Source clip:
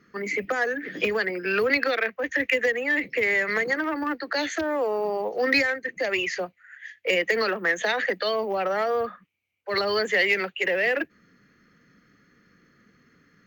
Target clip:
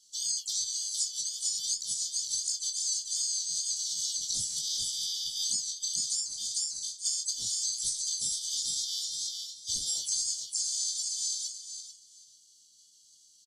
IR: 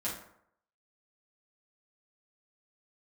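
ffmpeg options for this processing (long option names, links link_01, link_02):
-filter_complex "[0:a]afftfilt=real='real(if(lt(b,736),b+184*(1-2*mod(floor(b/184),2)),b),0)':imag='imag(if(lt(b,736),b+184*(1-2*mod(floor(b/184),2)),b),0)':win_size=2048:overlap=0.75,flanger=delay=16:depth=4.5:speed=2.7,firequalizer=gain_entry='entry(110,0);entry(170,-3);entry(350,-23);entry(2500,-25);entry(7200,15)':delay=0.05:min_phase=1,asplit=2[link_01][link_02];[link_02]aecho=0:1:445|890|1335:0.447|0.0849|0.0161[link_03];[link_01][link_03]amix=inputs=2:normalize=0,acrusher=bits=7:mode=log:mix=0:aa=0.000001,acompressor=threshold=-31dB:ratio=12,asplit=2[link_04][link_05];[link_05]adelay=27,volume=-10dB[link_06];[link_04][link_06]amix=inputs=2:normalize=0,asplit=4[link_07][link_08][link_09][link_10];[link_08]asetrate=29433,aresample=44100,atempo=1.49831,volume=-10dB[link_11];[link_09]asetrate=33038,aresample=44100,atempo=1.33484,volume=-4dB[link_12];[link_10]asetrate=55563,aresample=44100,atempo=0.793701,volume=-6dB[link_13];[link_07][link_11][link_12][link_13]amix=inputs=4:normalize=0,lowpass=frequency=11000:width=0.5412,lowpass=frequency=11000:width=1.3066,asetrate=46722,aresample=44100,atempo=0.943874"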